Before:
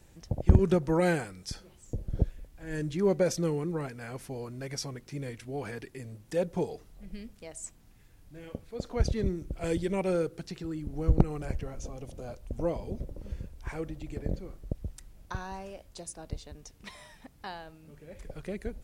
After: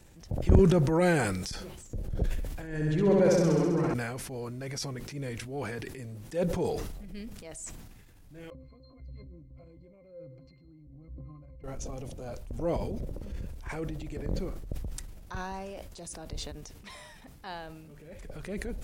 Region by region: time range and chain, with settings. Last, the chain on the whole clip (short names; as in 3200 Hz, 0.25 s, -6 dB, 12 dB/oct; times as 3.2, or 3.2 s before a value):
2.67–3.94 high shelf 4500 Hz -10.5 dB + flutter echo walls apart 11.2 m, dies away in 1.5 s
8.5–11.64 compressor 2.5:1, threshold -39 dBFS + octave resonator C, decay 0.24 s
whole clip: transient shaper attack -6 dB, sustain +4 dB; sustainer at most 38 dB/s; gain +1.5 dB